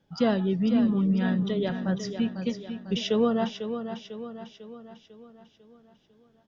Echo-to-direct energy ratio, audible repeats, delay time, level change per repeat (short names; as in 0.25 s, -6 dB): -7.5 dB, 5, 0.498 s, -6.0 dB